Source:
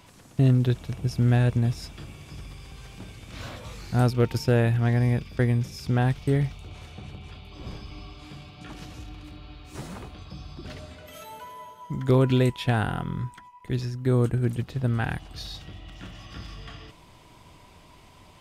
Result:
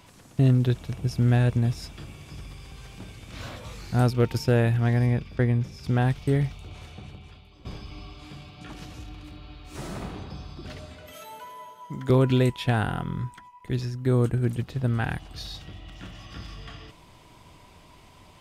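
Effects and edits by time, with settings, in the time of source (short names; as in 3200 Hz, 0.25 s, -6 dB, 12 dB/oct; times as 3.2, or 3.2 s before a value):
5.05–5.83 LPF 4600 Hz -> 2200 Hz 6 dB/oct
6.88–7.65 fade out, to -13 dB
9.62–10.11 reverb throw, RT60 1.6 s, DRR -1.5 dB
11.12–12.1 HPF 210 Hz 6 dB/oct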